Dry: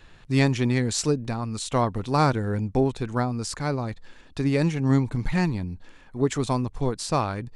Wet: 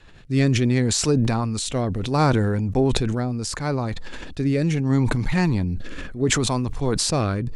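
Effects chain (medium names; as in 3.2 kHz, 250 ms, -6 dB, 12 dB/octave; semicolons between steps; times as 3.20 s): rotary cabinet horn 0.7 Hz; decay stretcher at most 21 dB/s; trim +3 dB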